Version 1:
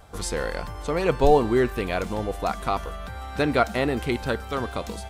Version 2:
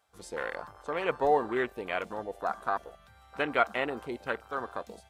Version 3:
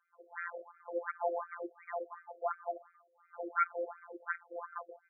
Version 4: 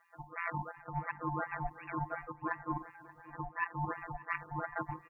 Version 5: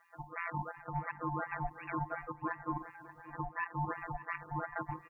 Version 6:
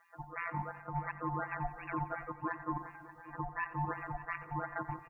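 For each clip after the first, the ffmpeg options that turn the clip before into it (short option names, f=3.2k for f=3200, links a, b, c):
-af "afwtdn=0.0316,highpass=f=1.1k:p=1"
-af "afftfilt=real='hypot(re,im)*cos(PI*b)':imag='0':win_size=1024:overlap=0.75,asoftclip=type=hard:threshold=-12.5dB,afftfilt=real='re*between(b*sr/1024,450*pow(1800/450,0.5+0.5*sin(2*PI*2.8*pts/sr))/1.41,450*pow(1800/450,0.5+0.5*sin(2*PI*2.8*pts/sr))*1.41)':imag='im*between(b*sr/1024,450*pow(1800/450,0.5+0.5*sin(2*PI*2.8*pts/sr))/1.41,450*pow(1800/450,0.5+0.5*sin(2*PI*2.8*pts/sr))*1.41)':win_size=1024:overlap=0.75,volume=1dB"
-filter_complex "[0:a]areverse,acompressor=threshold=-44dB:ratio=10,areverse,aeval=exprs='val(0)*sin(2*PI*370*n/s)':c=same,asplit=2[a][b];[b]adelay=581,lowpass=f=1.6k:p=1,volume=-17dB,asplit=2[c][d];[d]adelay=581,lowpass=f=1.6k:p=1,volume=0.38,asplit=2[e][f];[f]adelay=581,lowpass=f=1.6k:p=1,volume=0.38[g];[a][c][e][g]amix=inputs=4:normalize=0,volume=13.5dB"
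-af "alimiter=level_in=3.5dB:limit=-24dB:level=0:latency=1:release=150,volume=-3.5dB,volume=2dB"
-af "aecho=1:1:89|178|267|356|445:0.178|0.0907|0.0463|0.0236|0.012"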